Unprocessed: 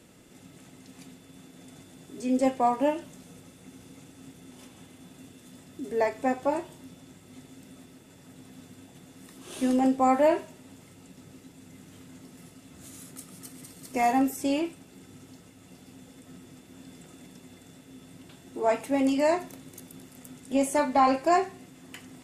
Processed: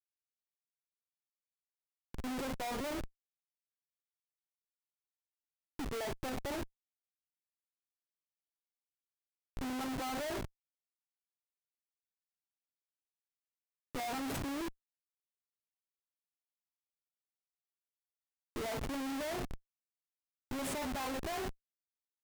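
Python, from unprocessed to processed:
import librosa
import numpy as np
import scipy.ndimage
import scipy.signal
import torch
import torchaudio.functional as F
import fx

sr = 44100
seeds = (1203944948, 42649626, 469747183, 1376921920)

y = fx.quant_dither(x, sr, seeds[0], bits=6, dither='none')
y = fx.env_lowpass(y, sr, base_hz=960.0, full_db=-23.5)
y = fx.schmitt(y, sr, flips_db=-34.5)
y = F.gain(torch.from_numpy(y), -7.0).numpy()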